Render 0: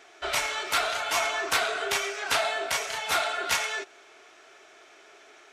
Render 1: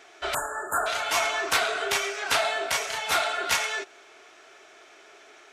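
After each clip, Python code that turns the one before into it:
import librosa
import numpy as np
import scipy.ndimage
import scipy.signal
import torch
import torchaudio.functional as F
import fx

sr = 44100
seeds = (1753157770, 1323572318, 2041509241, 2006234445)

y = fx.spec_erase(x, sr, start_s=0.34, length_s=0.52, low_hz=1800.0, high_hz=6800.0)
y = y * librosa.db_to_amplitude(1.5)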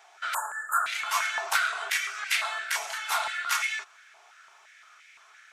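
y = fx.high_shelf(x, sr, hz=5800.0, db=8.5)
y = fx.filter_held_highpass(y, sr, hz=5.8, low_hz=840.0, high_hz=2100.0)
y = y * librosa.db_to_amplitude(-8.5)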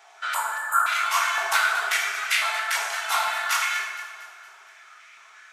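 y = fx.echo_feedback(x, sr, ms=232, feedback_pct=48, wet_db=-13.5)
y = fx.rev_plate(y, sr, seeds[0], rt60_s=1.6, hf_ratio=0.5, predelay_ms=0, drr_db=0.5)
y = y * librosa.db_to_amplitude(2.0)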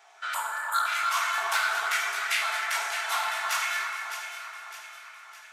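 y = fx.echo_alternate(x, sr, ms=304, hz=2000.0, feedback_pct=68, wet_db=-6.0)
y = fx.transformer_sat(y, sr, knee_hz=2800.0)
y = y * librosa.db_to_amplitude(-4.0)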